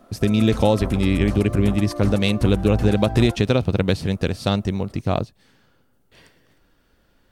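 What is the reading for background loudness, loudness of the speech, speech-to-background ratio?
−29.5 LKFS, −20.5 LKFS, 9.0 dB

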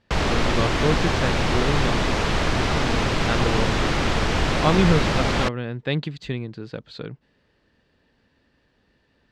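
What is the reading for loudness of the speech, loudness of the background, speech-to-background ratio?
−27.5 LKFS, −22.5 LKFS, −5.0 dB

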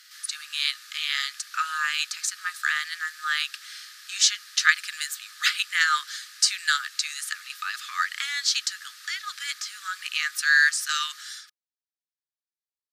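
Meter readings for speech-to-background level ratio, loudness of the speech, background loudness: 19.0 dB, −25.5 LKFS, −44.5 LKFS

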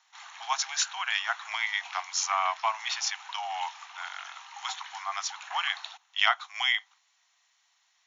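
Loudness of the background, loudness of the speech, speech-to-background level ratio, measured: −43.0 LKFS, −30.0 LKFS, 13.0 dB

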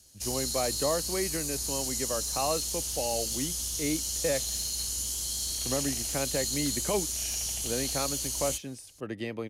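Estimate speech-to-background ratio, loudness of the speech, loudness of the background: −4.5 dB, −34.5 LKFS, −30.0 LKFS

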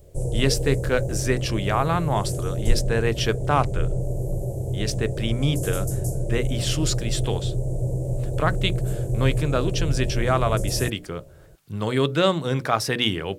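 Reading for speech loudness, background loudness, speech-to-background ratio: −25.5 LKFS, −27.5 LKFS, 2.0 dB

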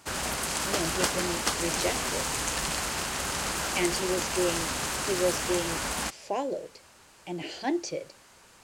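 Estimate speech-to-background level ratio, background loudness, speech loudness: −4.0 dB, −29.0 LKFS, −33.0 LKFS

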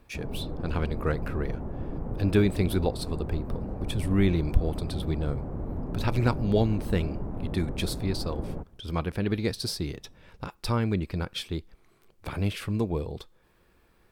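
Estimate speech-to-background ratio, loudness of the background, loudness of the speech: 6.0 dB, −36.0 LKFS, −30.0 LKFS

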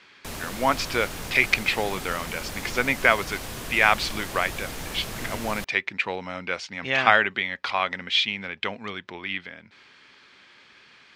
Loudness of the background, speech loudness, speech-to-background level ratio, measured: −35.0 LKFS, −25.0 LKFS, 10.0 dB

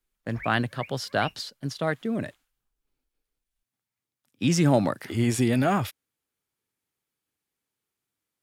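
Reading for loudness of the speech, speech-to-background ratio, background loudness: −26.5 LKFS, 16.5 dB, −43.0 LKFS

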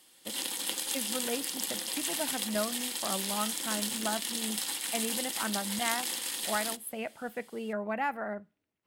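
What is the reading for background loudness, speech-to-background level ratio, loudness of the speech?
−32.5 LKFS, −4.5 dB, −37.0 LKFS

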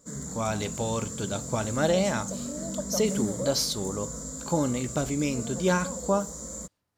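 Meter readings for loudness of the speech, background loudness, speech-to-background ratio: −29.0 LKFS, −34.5 LKFS, 5.5 dB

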